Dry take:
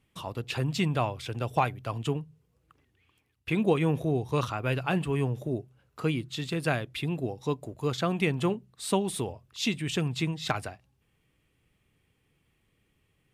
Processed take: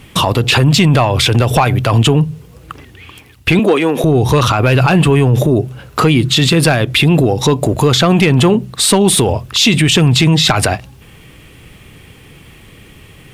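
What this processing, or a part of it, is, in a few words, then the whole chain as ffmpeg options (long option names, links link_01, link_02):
mastering chain: -filter_complex "[0:a]equalizer=frequency=3400:width_type=o:width=0.77:gain=1.5,acompressor=threshold=-30dB:ratio=2,asoftclip=type=tanh:threshold=-20dB,asoftclip=type=hard:threshold=-23.5dB,alimiter=level_in=33.5dB:limit=-1dB:release=50:level=0:latency=1,asettb=1/sr,asplit=3[link_01][link_02][link_03];[link_01]atrim=end=3.594[link_04];[link_02]atrim=start=3.59:end=4.04,asetpts=PTS-STARTPTS,afade=type=in:duration=0.004:curve=qsin,afade=type=out:start_time=0.446:duration=0.004:curve=qsin,highpass=frequency=240:width=0.5412,highpass=frequency=240:width=1.3066[link_05];[link_03]atrim=start=4.036[link_06];[link_04][link_05]acrossfade=duration=0.004:curve1=hsin:curve2=qsin[link_07];[link_07][link_06]acrossfade=duration=0.004:curve1=qsin:curve2=hsin,volume=-2dB"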